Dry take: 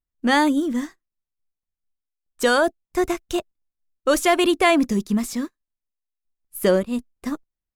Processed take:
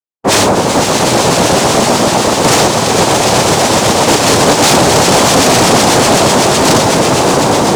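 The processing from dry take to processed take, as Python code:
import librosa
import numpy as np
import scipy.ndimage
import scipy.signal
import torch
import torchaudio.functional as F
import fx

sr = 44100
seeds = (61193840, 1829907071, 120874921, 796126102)

y = fx.echo_swell(x, sr, ms=125, loudest=8, wet_db=-5.5)
y = (np.mod(10.0 ** (5.5 / 20.0) * y + 1.0, 2.0) - 1.0) / 10.0 ** (5.5 / 20.0)
y = fx.noise_vocoder(y, sr, seeds[0], bands=2)
y = fx.leveller(y, sr, passes=3)
y = F.gain(torch.from_numpy(y), -1.5).numpy()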